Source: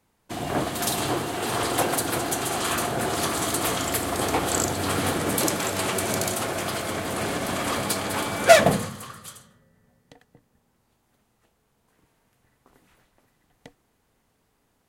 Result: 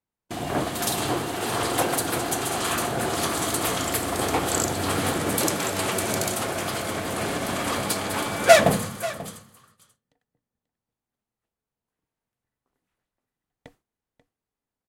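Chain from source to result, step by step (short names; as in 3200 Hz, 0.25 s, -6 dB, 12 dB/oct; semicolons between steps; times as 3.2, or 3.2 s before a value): gate with hold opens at -31 dBFS; 8.7–9.18 high shelf 10000 Hz +7 dB; echo 0.538 s -16.5 dB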